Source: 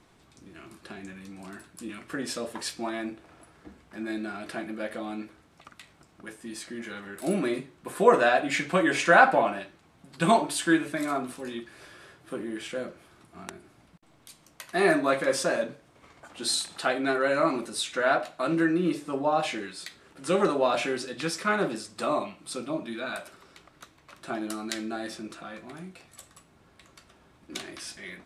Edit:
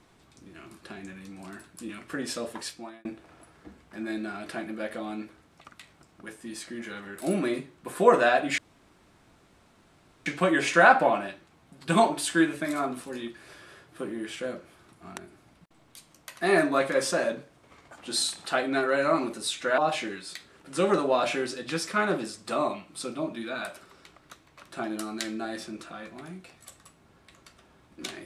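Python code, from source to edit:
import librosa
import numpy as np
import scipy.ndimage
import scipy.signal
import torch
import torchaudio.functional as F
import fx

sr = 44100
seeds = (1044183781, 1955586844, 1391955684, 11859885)

y = fx.edit(x, sr, fx.fade_out_span(start_s=2.5, length_s=0.55),
    fx.insert_room_tone(at_s=8.58, length_s=1.68),
    fx.cut(start_s=18.1, length_s=1.19), tone=tone)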